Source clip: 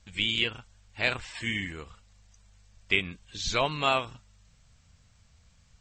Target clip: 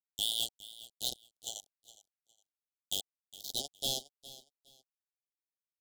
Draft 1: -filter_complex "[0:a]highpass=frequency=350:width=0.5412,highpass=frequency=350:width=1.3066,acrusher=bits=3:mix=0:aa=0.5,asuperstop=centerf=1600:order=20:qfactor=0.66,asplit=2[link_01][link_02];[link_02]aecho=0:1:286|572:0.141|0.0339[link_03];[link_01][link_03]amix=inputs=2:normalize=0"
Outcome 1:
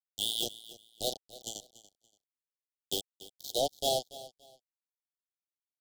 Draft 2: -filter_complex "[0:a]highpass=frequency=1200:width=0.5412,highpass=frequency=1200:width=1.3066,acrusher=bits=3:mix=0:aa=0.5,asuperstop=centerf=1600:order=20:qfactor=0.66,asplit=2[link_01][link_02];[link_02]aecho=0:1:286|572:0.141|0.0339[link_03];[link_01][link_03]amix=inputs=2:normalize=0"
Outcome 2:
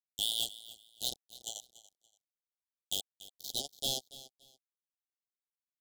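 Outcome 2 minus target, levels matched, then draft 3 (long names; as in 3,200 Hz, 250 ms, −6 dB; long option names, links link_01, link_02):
echo 126 ms early
-filter_complex "[0:a]highpass=frequency=1200:width=0.5412,highpass=frequency=1200:width=1.3066,acrusher=bits=3:mix=0:aa=0.5,asuperstop=centerf=1600:order=20:qfactor=0.66,asplit=2[link_01][link_02];[link_02]aecho=0:1:412|824:0.141|0.0339[link_03];[link_01][link_03]amix=inputs=2:normalize=0"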